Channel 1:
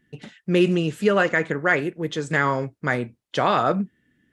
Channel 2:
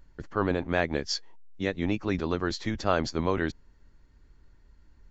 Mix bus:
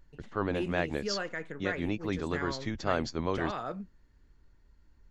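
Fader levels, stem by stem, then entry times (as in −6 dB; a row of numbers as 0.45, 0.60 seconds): −16.5, −4.5 decibels; 0.00, 0.00 seconds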